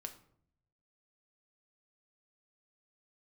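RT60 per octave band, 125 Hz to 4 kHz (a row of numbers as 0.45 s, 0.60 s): 1.2 s, 0.85 s, 0.70 s, 0.55 s, 0.45 s, 0.35 s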